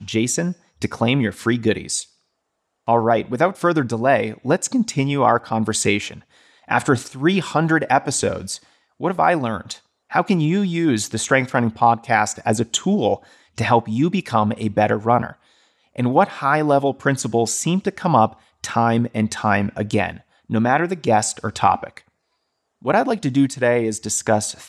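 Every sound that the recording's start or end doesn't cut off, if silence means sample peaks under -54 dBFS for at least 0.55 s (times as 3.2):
2.87–22.09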